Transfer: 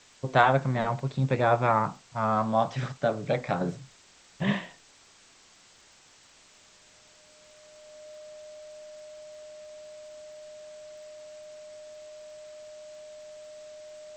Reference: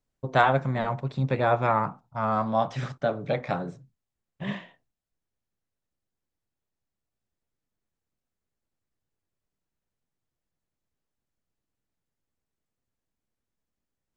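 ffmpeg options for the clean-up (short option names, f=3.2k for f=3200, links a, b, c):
-af "adeclick=t=4,bandreject=f=610:w=30,afwtdn=0.0022,asetnsamples=n=441:p=0,asendcmd='3.61 volume volume -5.5dB',volume=0dB"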